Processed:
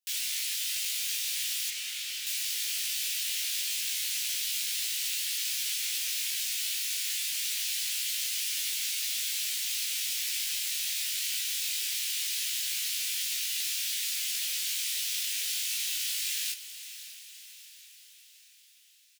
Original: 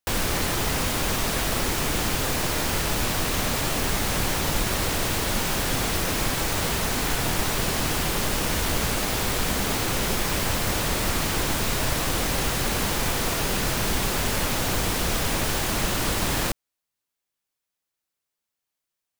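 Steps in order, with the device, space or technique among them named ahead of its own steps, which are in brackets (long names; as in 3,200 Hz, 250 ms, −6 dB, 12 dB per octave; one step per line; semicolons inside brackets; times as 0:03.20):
inverse Chebyshev high-pass filter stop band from 580 Hz, stop band 70 dB
high-pass filter 1,100 Hz 12 dB per octave
double-tracked vocal (double-tracking delay 22 ms −6 dB; chorus effect 0.22 Hz, delay 15 ms, depth 4.4 ms)
0:01.70–0:02.27: high-shelf EQ 6,600 Hz −10.5 dB
feedback delay with all-pass diffusion 587 ms, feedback 55%, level −13 dB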